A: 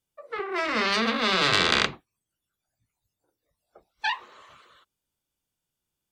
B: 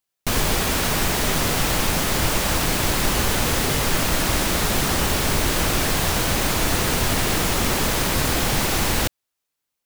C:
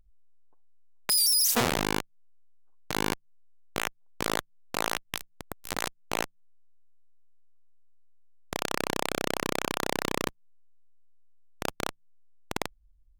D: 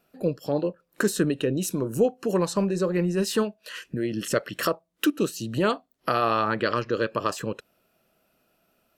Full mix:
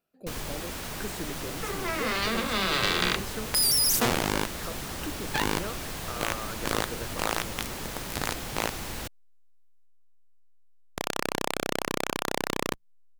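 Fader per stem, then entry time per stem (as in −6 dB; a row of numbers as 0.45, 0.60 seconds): −4.5, −15.0, 0.0, −15.0 decibels; 1.30, 0.00, 2.45, 0.00 seconds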